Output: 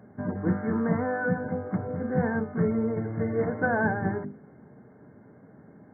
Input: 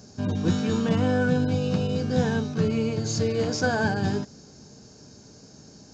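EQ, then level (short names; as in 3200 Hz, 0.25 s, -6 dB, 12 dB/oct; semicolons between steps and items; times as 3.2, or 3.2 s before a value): HPF 110 Hz; brick-wall FIR low-pass 2200 Hz; notches 50/100/150/200/250/300/350/400/450/500 Hz; 0.0 dB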